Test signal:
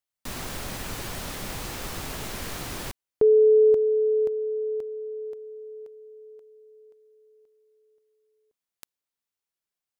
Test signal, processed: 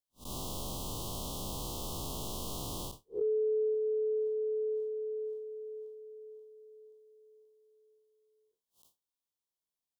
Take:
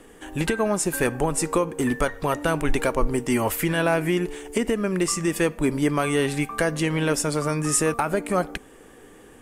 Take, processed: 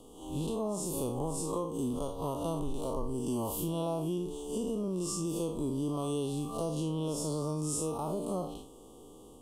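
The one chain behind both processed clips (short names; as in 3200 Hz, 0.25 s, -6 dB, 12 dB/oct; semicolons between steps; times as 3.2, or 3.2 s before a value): time blur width 0.112 s; elliptic band-stop 1100–3100 Hz, stop band 50 dB; compressor 4:1, threshold -29 dBFS; gain -2 dB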